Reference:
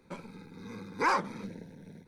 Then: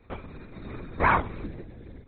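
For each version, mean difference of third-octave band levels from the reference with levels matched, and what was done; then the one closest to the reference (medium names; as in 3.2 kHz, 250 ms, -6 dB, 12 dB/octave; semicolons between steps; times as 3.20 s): 6.0 dB: LPC vocoder at 8 kHz whisper; trim +6 dB; MP3 32 kbps 44.1 kHz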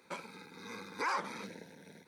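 7.5 dB: high-pass 960 Hz 6 dB/octave; peak limiter -31.5 dBFS, peak gain reduction 11.5 dB; trim +6 dB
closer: first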